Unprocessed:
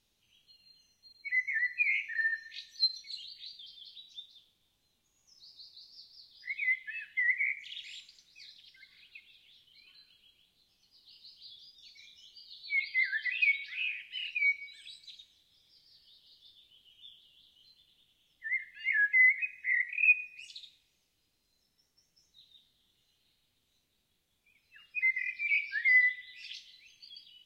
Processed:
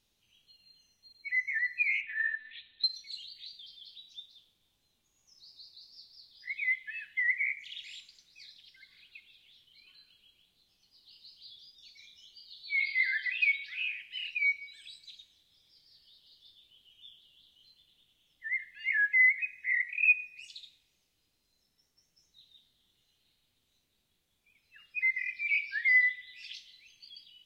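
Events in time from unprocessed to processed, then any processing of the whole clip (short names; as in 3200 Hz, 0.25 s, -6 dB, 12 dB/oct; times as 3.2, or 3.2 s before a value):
2.01–2.84 monotone LPC vocoder at 8 kHz 250 Hz
12.63–13.09 reverb throw, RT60 0.84 s, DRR 2.5 dB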